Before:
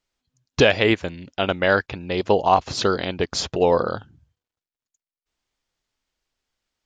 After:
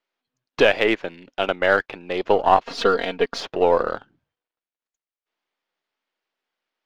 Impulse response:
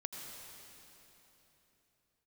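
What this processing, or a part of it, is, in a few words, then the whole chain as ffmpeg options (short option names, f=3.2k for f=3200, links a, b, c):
crystal radio: -filter_complex "[0:a]highpass=340,lowpass=3.1k,aeval=exprs='if(lt(val(0),0),0.708*val(0),val(0))':c=same,asettb=1/sr,asplit=3[a][b][c];[a]atrim=end=2.644[d];[b]atrim=start=2.64:end=3.38,asetpts=PTS-STARTPTS,afade=t=in:d=0.004:c=qsin,afade=t=out:st=0.736:d=0.004:c=qsin,aecho=1:1:4.3:0.88,atrim=end_sample=32634[e];[c]atrim=start=3.376[f];[d][e]acrossfade=d=0.004:c1=hsin:c2=qsin[g];[g][f]acrossfade=d=0.004:c1=qsin:c2=hsin,volume=2.5dB"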